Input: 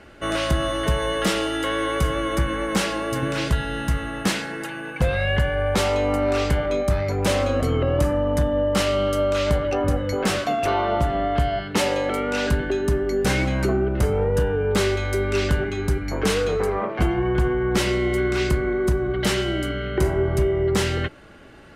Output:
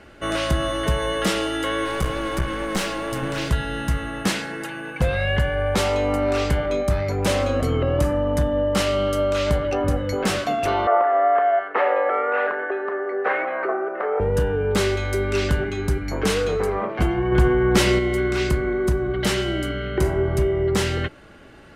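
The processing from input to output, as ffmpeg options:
ffmpeg -i in.wav -filter_complex "[0:a]asettb=1/sr,asplit=3[link_01][link_02][link_03];[link_01]atrim=end=1.854[link_04];[link_02]atrim=start=1.85:end=3.51,asetpts=PTS-STARTPTS,afade=type=in:duration=0.004:curve=qsin,afade=type=out:start_time=1.656:duration=0.004:curve=qsin,aeval=exprs='clip(val(0),-1,0.0501)':channel_layout=same[link_05];[link_03]atrim=start=3.506[link_06];[link_04][link_05]acrossfade=duration=0.004:curve1=hsin:curve2=qsin[link_07];[link_07][link_06]acrossfade=duration=0.004:curve1=qsin:curve2=hsin,asettb=1/sr,asplit=3[link_08][link_09][link_10];[link_08]atrim=end=10.874[link_11];[link_09]atrim=start=10.87:end=14.2,asetpts=PTS-STARTPTS,afade=type=in:duration=0.004:curve=qsin,afade=type=out:start_time=3.326:duration=0.004:curve=qsin,highpass=frequency=420:width=0.5412,highpass=frequency=420:width=1.3066,equalizer=frequency=490:width_type=q:width=4:gain=4,equalizer=frequency=720:width_type=q:width=4:gain=7,equalizer=frequency=1200:width_type=q:width=4:gain=9,equalizer=frequency=1800:width_type=q:width=4:gain=6,lowpass=frequency=2100:width=0.5412,lowpass=frequency=2100:width=1.3066[link_12];[link_10]atrim=start=14.196[link_13];[link_11][link_12]acrossfade=duration=0.004:curve1=hsin:curve2=qsin[link_14];[link_14][link_13]acrossfade=duration=0.004:curve1=qsin:curve2=hsin,asplit=3[link_15][link_16][link_17];[link_15]atrim=end=17.322[link_18];[link_16]atrim=start=17.318:end=17.992,asetpts=PTS-STARTPTS,volume=4dB[link_19];[link_17]atrim=start=17.988[link_20];[link_18][link_19]acrossfade=duration=0.004:curve1=hsin:curve2=hsin[link_21];[link_21][link_20]acrossfade=duration=0.004:curve1=hsin:curve2=hsin" out.wav

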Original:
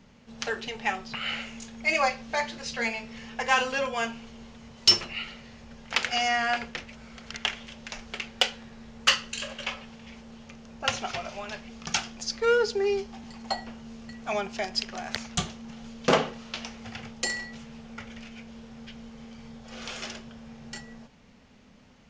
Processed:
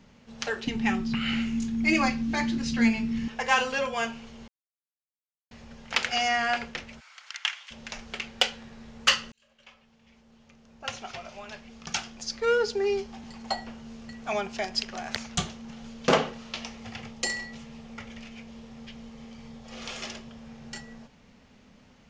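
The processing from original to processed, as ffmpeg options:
ffmpeg -i in.wav -filter_complex "[0:a]asettb=1/sr,asplit=3[link_01][link_02][link_03];[link_01]atrim=end=0.674[link_04];[link_02]atrim=start=0.67:end=3.28,asetpts=PTS-STARTPTS,afade=type=in:duration=0.004:curve=qsin,afade=type=out:start_time=2.606:duration=0.004:curve=qsin,lowshelf=frequency=390:width_type=q:width=3:gain=10.5[link_05];[link_03]atrim=start=3.276[link_06];[link_04][link_05]acrossfade=duration=0.004:curve1=hsin:curve2=qsin[link_07];[link_07][link_06]acrossfade=duration=0.004:curve1=qsin:curve2=hsin,asplit=3[link_08][link_09][link_10];[link_08]afade=type=out:start_time=6.99:duration=0.02[link_11];[link_09]highpass=frequency=1000:width=0.5412,highpass=frequency=1000:width=1.3066,afade=type=in:start_time=6.99:duration=0.02,afade=type=out:start_time=7.7:duration=0.02[link_12];[link_10]afade=type=in:start_time=7.7:duration=0.02[link_13];[link_11][link_12][link_13]amix=inputs=3:normalize=0,asettb=1/sr,asplit=3[link_14][link_15][link_16];[link_14]atrim=end=16.484[link_17];[link_15]atrim=start=16.48:end=20.41,asetpts=PTS-STARTPTS,afade=type=in:duration=0.004:curve=qsin,afade=type=out:start_time=3.926:duration=0.004:curve=qsin,bandreject=frequency=1500:width=10[link_18];[link_16]atrim=start=20.406[link_19];[link_17][link_18]acrossfade=duration=0.004:curve1=hsin:curve2=qsin[link_20];[link_20][link_19]acrossfade=duration=0.004:curve1=qsin:curve2=hsin,asplit=4[link_21][link_22][link_23][link_24];[link_21]atrim=end=4.48,asetpts=PTS-STARTPTS,afade=type=out:start_time=4.476:duration=0.004:curve=hsin[link_25];[link_22]atrim=start=4.48:end=5.51,asetpts=PTS-STARTPTS,volume=0[link_26];[link_23]atrim=start=5.51:end=9.32,asetpts=PTS-STARTPTS,afade=type=in:duration=0.004:curve=hsin,afade=type=out:start_time=3.806:duration=0.004:curve=hsin[link_27];[link_24]atrim=start=9.32,asetpts=PTS-STARTPTS,afade=type=in:duration=3.75[link_28];[link_25][link_26][link_27][link_28]concat=n=4:v=0:a=1" out.wav

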